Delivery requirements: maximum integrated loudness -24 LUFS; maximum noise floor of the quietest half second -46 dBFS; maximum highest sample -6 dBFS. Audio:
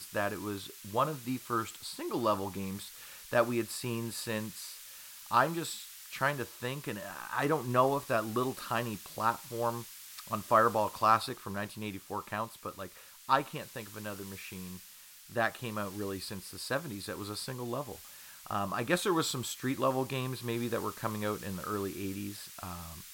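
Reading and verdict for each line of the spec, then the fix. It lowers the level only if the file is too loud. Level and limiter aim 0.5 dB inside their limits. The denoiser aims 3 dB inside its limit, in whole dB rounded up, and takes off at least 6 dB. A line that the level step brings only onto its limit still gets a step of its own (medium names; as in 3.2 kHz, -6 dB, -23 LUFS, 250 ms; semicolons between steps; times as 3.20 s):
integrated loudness -34.0 LUFS: pass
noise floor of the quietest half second -53 dBFS: pass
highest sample -10.5 dBFS: pass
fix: none needed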